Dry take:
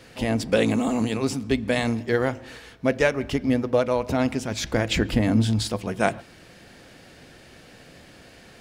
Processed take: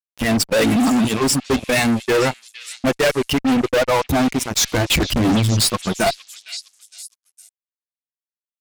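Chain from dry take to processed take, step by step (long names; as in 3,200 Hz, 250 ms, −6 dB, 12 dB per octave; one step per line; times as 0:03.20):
spectral dynamics exaggerated over time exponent 2
high-shelf EQ 5,300 Hz +6 dB
fuzz pedal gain 37 dB, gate −43 dBFS
echo through a band-pass that steps 461 ms, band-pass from 3,300 Hz, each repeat 0.7 octaves, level −8.5 dB
saturating transformer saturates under 130 Hz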